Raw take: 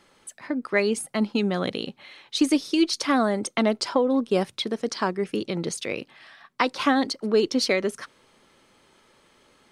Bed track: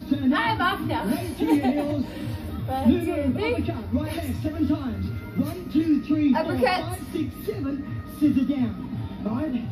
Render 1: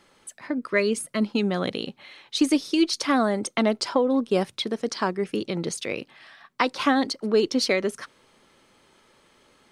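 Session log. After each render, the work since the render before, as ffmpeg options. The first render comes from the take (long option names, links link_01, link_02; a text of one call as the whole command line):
ffmpeg -i in.wav -filter_complex "[0:a]asettb=1/sr,asplit=3[link_01][link_02][link_03];[link_01]atrim=end=0.584[link_04];[link_02]atrim=start=0.58:end=1.26,asetpts=PTS-STARTPTS,afade=type=in:duration=0.004:curve=qsin,afade=type=out:start_time=0.676:duration=0.004:curve=qsin,asuperstop=centerf=790:order=8:qfactor=3.6[link_05];[link_03]atrim=start=1.256[link_06];[link_04][link_05]acrossfade=duration=0.004:curve1=hsin:curve2=qsin[link_07];[link_07][link_06]acrossfade=duration=0.004:curve1=qsin:curve2=hsin" out.wav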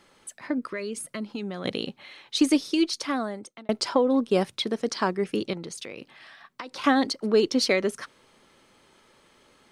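ffmpeg -i in.wav -filter_complex "[0:a]asplit=3[link_01][link_02][link_03];[link_01]afade=type=out:start_time=0.7:duration=0.02[link_04];[link_02]acompressor=threshold=-32dB:ratio=3:attack=3.2:release=140:knee=1:detection=peak,afade=type=in:start_time=0.7:duration=0.02,afade=type=out:start_time=1.64:duration=0.02[link_05];[link_03]afade=type=in:start_time=1.64:duration=0.02[link_06];[link_04][link_05][link_06]amix=inputs=3:normalize=0,asettb=1/sr,asplit=3[link_07][link_08][link_09];[link_07]atrim=end=5.534[link_10];[link_08]atrim=start=5.53:end=6.84,asetpts=PTS-STARTPTS,afade=type=in:duration=0.004:curve=qsin,afade=type=out:start_time=1.306:duration=0.004:curve=qsin,acompressor=threshold=-33dB:ratio=10:attack=3.2:release=140:knee=1:detection=peak[link_11];[link_09]atrim=start=6.836[link_12];[link_10][link_11]acrossfade=duration=0.004:curve1=hsin:curve2=qsin[link_13];[link_13][link_12]acrossfade=duration=0.004:curve1=qsin:curve2=hsin,asplit=2[link_14][link_15];[link_14]atrim=end=3.69,asetpts=PTS-STARTPTS,afade=type=out:start_time=2.56:duration=1.13[link_16];[link_15]atrim=start=3.69,asetpts=PTS-STARTPTS,afade=type=in:duration=0.004:curve=hsin[link_17];[link_16][link_17]concat=n=2:v=0:a=1" out.wav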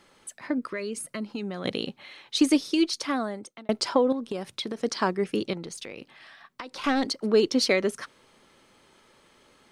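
ffmpeg -i in.wav -filter_complex "[0:a]asettb=1/sr,asplit=3[link_01][link_02][link_03];[link_01]atrim=end=0.894[link_04];[link_02]atrim=start=0.89:end=1.58,asetpts=PTS-STARTPTS,afade=type=in:duration=0.004:curve=qsin,afade=type=out:start_time=0.686:duration=0.004:curve=qsin,bandreject=frequency=3400:width=12[link_05];[link_03]atrim=start=1.576[link_06];[link_04][link_05]acrossfade=duration=0.004:curve1=hsin:curve2=qsin[link_07];[link_07][link_06]acrossfade=duration=0.004:curve1=qsin:curve2=hsin,asettb=1/sr,asplit=3[link_08][link_09][link_10];[link_08]atrim=end=4.124[link_11];[link_09]atrim=start=4.12:end=4.77,asetpts=PTS-STARTPTS,afade=type=in:duration=0.004:curve=qsin,afade=type=out:start_time=0.646:duration=0.004:curve=qsin,acompressor=threshold=-27dB:ratio=10:attack=3.2:release=140:knee=1:detection=peak[link_12];[link_10]atrim=start=4.766[link_13];[link_11][link_12]acrossfade=duration=0.004:curve1=hsin:curve2=qsin[link_14];[link_14][link_13]acrossfade=duration=0.004:curve1=qsin:curve2=hsin,asettb=1/sr,asplit=3[link_15][link_16][link_17];[link_15]atrim=end=5.644[link_18];[link_16]atrim=start=5.64:end=7.06,asetpts=PTS-STARTPTS,afade=type=in:duration=0.004:curve=qsin,afade=type=out:start_time=1.416:duration=0.004:curve=qsin,aeval=exprs='(tanh(7.94*val(0)+0.35)-tanh(0.35))/7.94':channel_layout=same[link_19];[link_17]atrim=start=7.056[link_20];[link_18][link_19]acrossfade=duration=0.004:curve1=hsin:curve2=qsin[link_21];[link_21][link_20]acrossfade=duration=0.004:curve1=qsin:curve2=hsin" out.wav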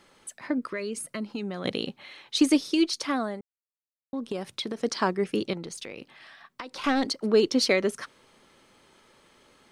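ffmpeg -i in.wav -filter_complex "[0:a]asplit=3[link_01][link_02][link_03];[link_01]atrim=end=3.41,asetpts=PTS-STARTPTS,afade=type=out:start_time=3.406:duration=0.004:curve=hsin[link_04];[link_02]atrim=start=3.41:end=4.13,asetpts=PTS-STARTPTS,volume=0[link_05];[link_03]atrim=start=4.13,asetpts=PTS-STARTPTS,afade=type=in:duration=0.004:curve=hsin[link_06];[link_04][link_05][link_06]concat=n=3:v=0:a=1" out.wav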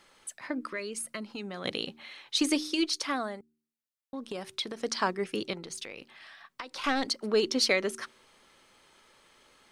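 ffmpeg -i in.wav -af "equalizer=frequency=180:width=0.31:gain=-7,bandreject=frequency=76.39:width_type=h:width=4,bandreject=frequency=152.78:width_type=h:width=4,bandreject=frequency=229.17:width_type=h:width=4,bandreject=frequency=305.56:width_type=h:width=4,bandreject=frequency=381.95:width_type=h:width=4" out.wav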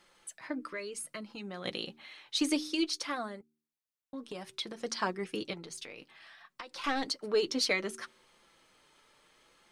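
ffmpeg -i in.wav -af "flanger=delay=5.6:depth=1.2:regen=-39:speed=0.61:shape=sinusoidal" out.wav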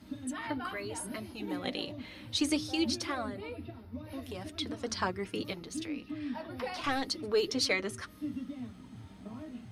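ffmpeg -i in.wav -i bed.wav -filter_complex "[1:a]volume=-17.5dB[link_01];[0:a][link_01]amix=inputs=2:normalize=0" out.wav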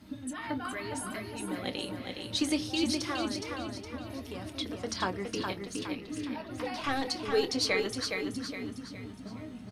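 ffmpeg -i in.wav -filter_complex "[0:a]asplit=2[link_01][link_02];[link_02]adelay=26,volume=-13dB[link_03];[link_01][link_03]amix=inputs=2:normalize=0,aecho=1:1:415|830|1245|1660|2075:0.562|0.236|0.0992|0.0417|0.0175" out.wav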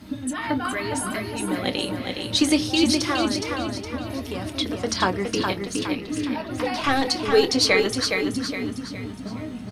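ffmpeg -i in.wav -af "volume=10dB" out.wav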